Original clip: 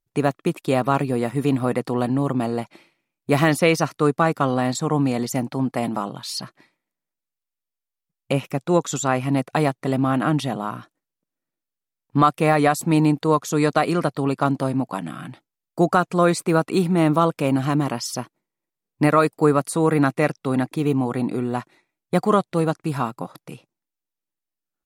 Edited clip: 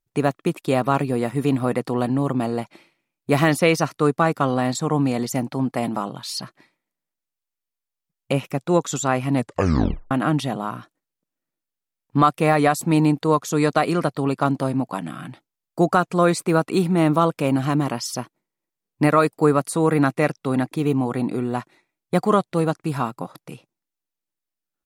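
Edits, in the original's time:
0:09.35: tape stop 0.76 s

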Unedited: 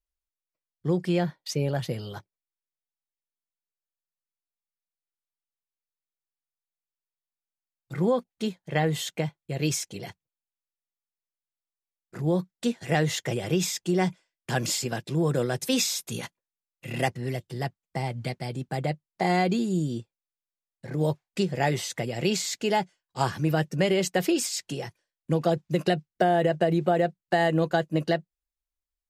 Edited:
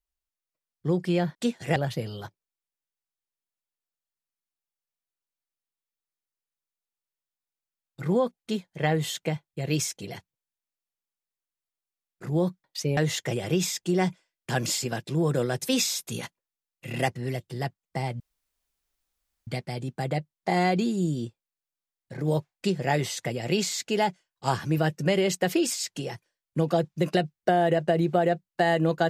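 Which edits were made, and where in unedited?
0:01.35–0:01.68: swap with 0:12.56–0:12.97
0:18.20: splice in room tone 1.27 s

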